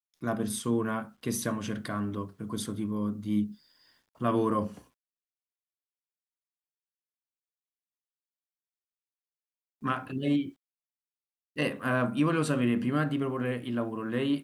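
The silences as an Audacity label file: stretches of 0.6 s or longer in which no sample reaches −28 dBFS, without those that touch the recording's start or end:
3.440000	4.220000	silence
4.670000	9.850000	silence
10.420000	11.580000	silence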